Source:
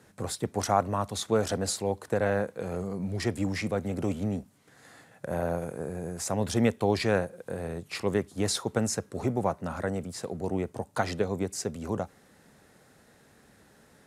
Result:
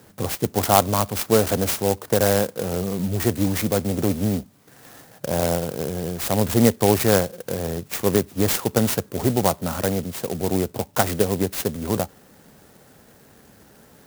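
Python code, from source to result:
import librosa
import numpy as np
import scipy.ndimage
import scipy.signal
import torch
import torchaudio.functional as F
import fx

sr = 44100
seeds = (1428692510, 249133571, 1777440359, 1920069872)

y = fx.clock_jitter(x, sr, seeds[0], jitter_ms=0.099)
y = y * librosa.db_to_amplitude(8.0)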